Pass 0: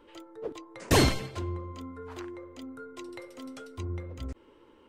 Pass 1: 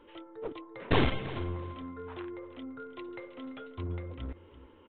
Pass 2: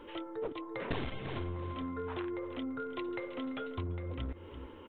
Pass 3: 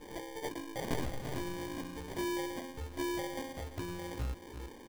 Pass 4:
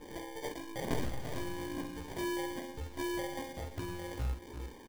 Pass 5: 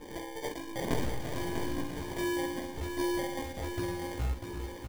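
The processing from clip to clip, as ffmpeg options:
-af "aresample=8000,aeval=exprs='clip(val(0),-1,0.0158)':c=same,aresample=44100,aecho=1:1:339|678:0.158|0.038"
-af "acompressor=threshold=-42dB:ratio=5,volume=7dB"
-filter_complex "[0:a]asplit=2[a][b];[b]adelay=17,volume=-2dB[c];[a][c]amix=inputs=2:normalize=0,acrusher=samples=33:mix=1:aa=0.000001,volume=-1.5dB"
-filter_complex "[0:a]aphaser=in_gain=1:out_gain=1:delay=1.9:decay=0.2:speed=1.1:type=triangular,asplit=2[a][b];[b]adelay=48,volume=-9dB[c];[a][c]amix=inputs=2:normalize=0,volume=-1dB"
-af "aecho=1:1:646:0.473,volume=3dB"

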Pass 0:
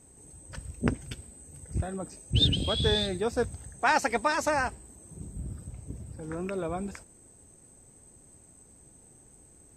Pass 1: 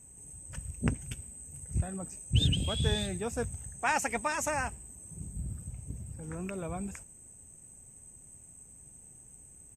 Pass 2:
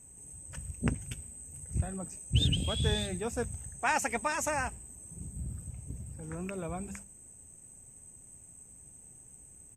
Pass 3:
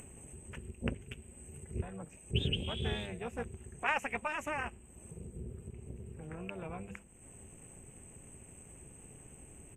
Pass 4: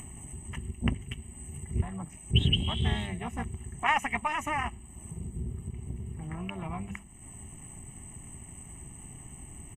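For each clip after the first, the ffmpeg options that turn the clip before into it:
-af "firequalizer=gain_entry='entry(160,0);entry(320,-8);entry(820,-5);entry(1400,-6);entry(2700,0);entry(4300,-14);entry(6700,4)':delay=0.05:min_phase=1"
-af "bandreject=f=50:t=h:w=6,bandreject=f=100:t=h:w=6,bandreject=f=150:t=h:w=6,bandreject=f=200:t=h:w=6"
-af "tremolo=f=300:d=0.788,highshelf=f=3.6k:t=q:w=3:g=-9,acompressor=mode=upward:threshold=-37dB:ratio=2.5,volume=-2.5dB"
-af "aecho=1:1:1:0.8,volume=4.5dB"

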